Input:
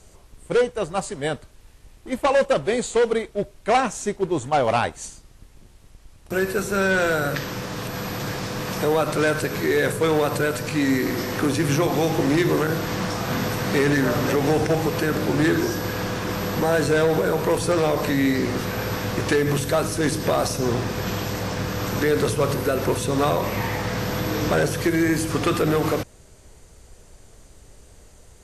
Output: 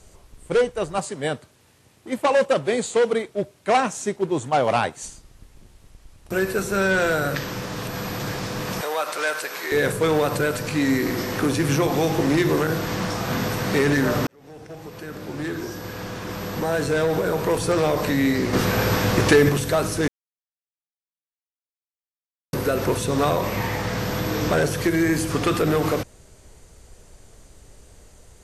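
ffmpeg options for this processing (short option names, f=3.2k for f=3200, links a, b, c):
-filter_complex "[0:a]asettb=1/sr,asplit=3[a][b][c];[a]atrim=end=0.984[d];[b]atrim=start=0.98:end=5.03,asetpts=PTS-STARTPTS,afade=t=in:d=0.004:c=qsin,afade=t=out:st=4.046:d=0.004:c=qsin,highpass=f=100:w=0.5412,highpass=f=100:w=1.3066[e];[c]atrim=start=5.026[f];[d][e]acrossfade=d=0.004:c1=hsin:c2=qsin[g];[g][f]acrossfade=d=0.004:c1=qsin:c2=hsin,asettb=1/sr,asplit=3[h][i][j];[h]atrim=end=8.814[k];[i]atrim=start=8.81:end=9.72,asetpts=PTS-STARTPTS,afade=t=in:d=0.004:c=qsin,afade=t=out:st=0.906:d=0.004:c=qsin,highpass=720[l];[j]atrim=start=9.716[m];[k][l]acrossfade=d=0.004:c1=hsin:c2=qsin[n];[n][m]acrossfade=d=0.004:c1=qsin:c2=hsin,asettb=1/sr,asplit=3[o][p][q];[o]atrim=end=18.534[r];[p]atrim=start=18.53:end=19.49,asetpts=PTS-STARTPTS,afade=t=in:d=0.004:c=qsin,afade=t=out:st=0.956:d=0.004:c=qsin,acontrast=45[s];[q]atrim=start=19.486[t];[r][s]acrossfade=d=0.004:c1=hsin:c2=qsin[u];[u][t]acrossfade=d=0.004:c1=qsin:c2=hsin,asplit=4[v][w][x][y];[v]atrim=end=14.27,asetpts=PTS-STARTPTS,afade=t=out:st=14.266:d=0.004:c=hsin[z];[w]atrim=start=14.27:end=20.08,asetpts=PTS-STARTPTS,afade=t=in:d=3.56,afade=t=out:st=5.806:d=0.004:c=hsin[aa];[x]atrim=start=20.08:end=22.53,asetpts=PTS-STARTPTS,volume=0[ab];[y]atrim=start=22.53,asetpts=PTS-STARTPTS,afade=t=in:d=0.004:c=hsin[ac];[z][aa][ab][ac]concat=n=4:v=0:a=1"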